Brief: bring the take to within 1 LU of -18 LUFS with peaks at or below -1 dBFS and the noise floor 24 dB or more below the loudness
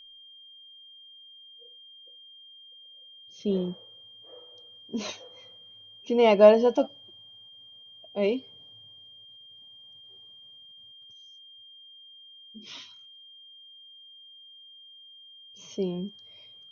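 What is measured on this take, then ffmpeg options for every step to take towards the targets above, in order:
steady tone 3.2 kHz; tone level -48 dBFS; loudness -25.0 LUFS; peak level -4.5 dBFS; loudness target -18.0 LUFS
-> -af "bandreject=f=3200:w=30"
-af "volume=2.24,alimiter=limit=0.891:level=0:latency=1"

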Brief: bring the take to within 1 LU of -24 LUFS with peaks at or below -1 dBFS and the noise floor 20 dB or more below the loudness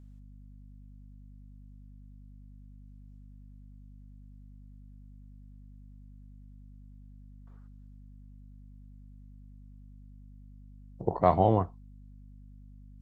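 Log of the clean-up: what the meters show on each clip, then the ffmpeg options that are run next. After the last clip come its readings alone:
hum 50 Hz; highest harmonic 250 Hz; hum level -48 dBFS; loudness -27.0 LUFS; peak level -7.5 dBFS; loudness target -24.0 LUFS
-> -af "bandreject=f=50:t=h:w=4,bandreject=f=100:t=h:w=4,bandreject=f=150:t=h:w=4,bandreject=f=200:t=h:w=4,bandreject=f=250:t=h:w=4"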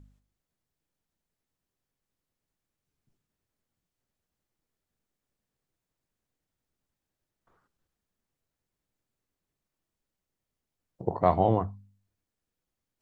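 hum not found; loudness -27.0 LUFS; peak level -7.5 dBFS; loudness target -24.0 LUFS
-> -af "volume=1.41"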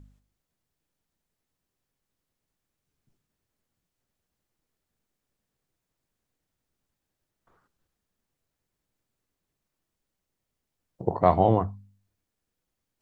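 loudness -24.0 LUFS; peak level -4.5 dBFS; noise floor -84 dBFS

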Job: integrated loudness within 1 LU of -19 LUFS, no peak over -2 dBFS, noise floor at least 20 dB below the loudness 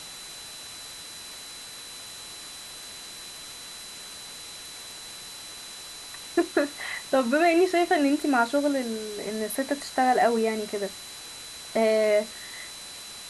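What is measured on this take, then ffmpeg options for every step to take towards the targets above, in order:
steady tone 4 kHz; tone level -43 dBFS; noise floor -42 dBFS; noise floor target -46 dBFS; loudness -25.5 LUFS; peak level -9.0 dBFS; loudness target -19.0 LUFS
-> -af "bandreject=f=4000:w=30"
-af "afftdn=nr=6:nf=-42"
-af "volume=2.11"

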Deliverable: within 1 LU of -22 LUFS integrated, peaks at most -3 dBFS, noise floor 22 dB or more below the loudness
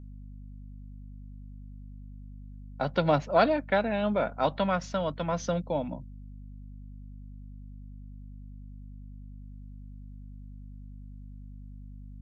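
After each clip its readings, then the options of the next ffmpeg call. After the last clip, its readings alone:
hum 50 Hz; highest harmonic 250 Hz; hum level -42 dBFS; loudness -28.0 LUFS; peak level -9.5 dBFS; loudness target -22.0 LUFS
-> -af "bandreject=f=50:t=h:w=4,bandreject=f=100:t=h:w=4,bandreject=f=150:t=h:w=4,bandreject=f=200:t=h:w=4,bandreject=f=250:t=h:w=4"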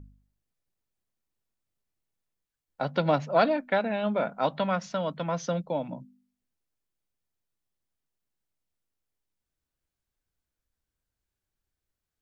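hum not found; loudness -28.0 LUFS; peak level -10.0 dBFS; loudness target -22.0 LUFS
-> -af "volume=2"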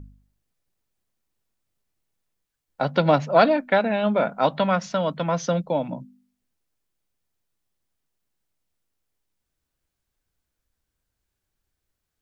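loudness -22.0 LUFS; peak level -4.0 dBFS; noise floor -82 dBFS

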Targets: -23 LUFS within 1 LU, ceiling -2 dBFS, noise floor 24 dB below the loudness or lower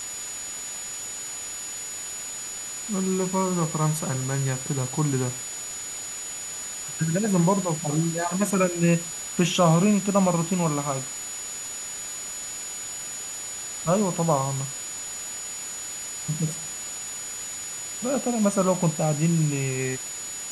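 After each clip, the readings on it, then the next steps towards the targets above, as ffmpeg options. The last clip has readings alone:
steady tone 6.9 kHz; tone level -33 dBFS; noise floor -35 dBFS; noise floor target -50 dBFS; loudness -26.0 LUFS; peak level -8.0 dBFS; loudness target -23.0 LUFS
-> -af "bandreject=f=6900:w=30"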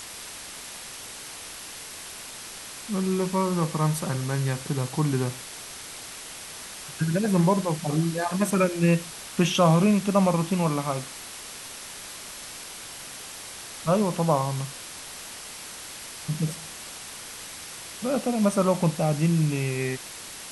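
steady tone not found; noise floor -40 dBFS; noise floor target -52 dBFS
-> -af "afftdn=nr=12:nf=-40"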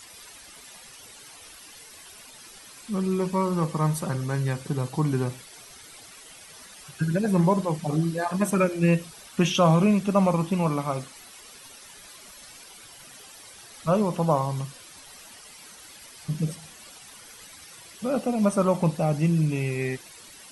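noise floor -47 dBFS; noise floor target -49 dBFS
-> -af "afftdn=nr=6:nf=-47"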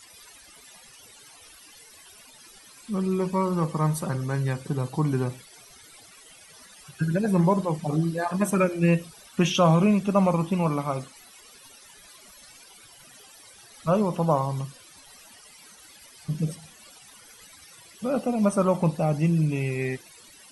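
noise floor -51 dBFS; loudness -25.0 LUFS; peak level -8.5 dBFS; loudness target -23.0 LUFS
-> -af "volume=1.26"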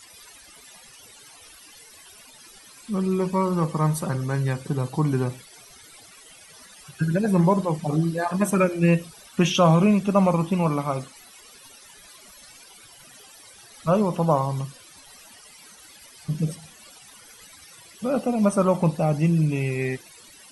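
loudness -23.0 LUFS; peak level -6.5 dBFS; noise floor -49 dBFS

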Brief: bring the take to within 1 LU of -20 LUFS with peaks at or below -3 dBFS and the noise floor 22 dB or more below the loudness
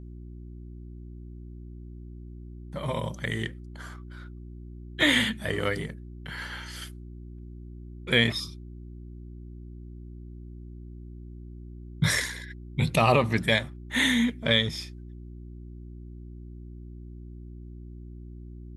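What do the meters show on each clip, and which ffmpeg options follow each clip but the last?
hum 60 Hz; highest harmonic 360 Hz; hum level -40 dBFS; loudness -26.5 LUFS; peak level -7.5 dBFS; loudness target -20.0 LUFS
-> -af "bandreject=f=60:t=h:w=4,bandreject=f=120:t=h:w=4,bandreject=f=180:t=h:w=4,bandreject=f=240:t=h:w=4,bandreject=f=300:t=h:w=4,bandreject=f=360:t=h:w=4"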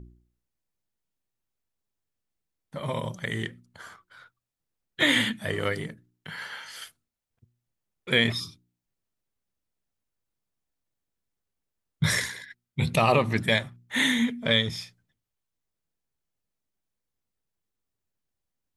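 hum not found; loudness -26.0 LUFS; peak level -7.5 dBFS; loudness target -20.0 LUFS
-> -af "volume=2,alimiter=limit=0.708:level=0:latency=1"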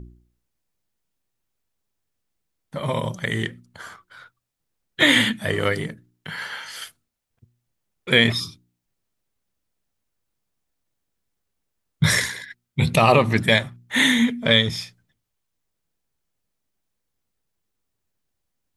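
loudness -20.0 LUFS; peak level -3.0 dBFS; noise floor -79 dBFS

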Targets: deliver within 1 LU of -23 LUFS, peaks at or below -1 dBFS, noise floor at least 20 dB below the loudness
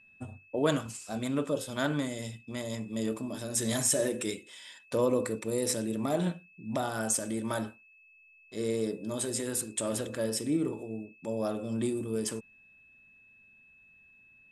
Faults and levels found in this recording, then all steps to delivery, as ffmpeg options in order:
steady tone 2.6 kHz; tone level -57 dBFS; loudness -32.0 LUFS; peak level -14.0 dBFS; loudness target -23.0 LUFS
-> -af "bandreject=f=2600:w=30"
-af "volume=2.82"

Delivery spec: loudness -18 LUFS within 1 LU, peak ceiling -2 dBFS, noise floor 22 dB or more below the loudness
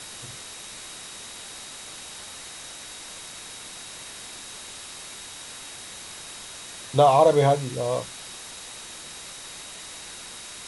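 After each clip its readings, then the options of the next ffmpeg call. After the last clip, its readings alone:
steady tone 3.8 kHz; tone level -47 dBFS; noise floor -41 dBFS; noise floor target -51 dBFS; loudness -28.5 LUFS; peak level -6.5 dBFS; loudness target -18.0 LUFS
-> -af "bandreject=f=3800:w=30"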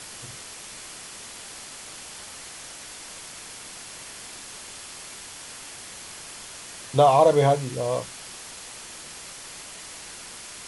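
steady tone not found; noise floor -41 dBFS; noise floor target -51 dBFS
-> -af "afftdn=nr=10:nf=-41"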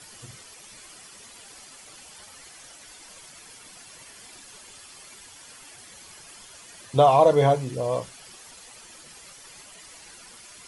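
noise floor -48 dBFS; loudness -20.5 LUFS; peak level -7.0 dBFS; loudness target -18.0 LUFS
-> -af "volume=1.33"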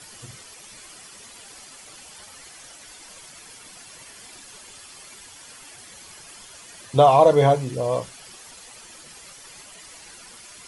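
loudness -18.0 LUFS; peak level -4.5 dBFS; noise floor -45 dBFS

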